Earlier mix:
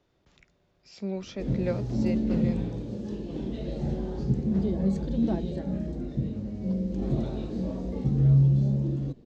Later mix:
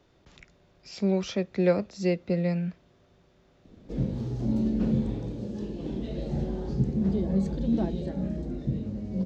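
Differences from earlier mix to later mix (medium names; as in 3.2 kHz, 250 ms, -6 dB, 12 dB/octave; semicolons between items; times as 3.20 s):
speech +7.5 dB; background: entry +2.50 s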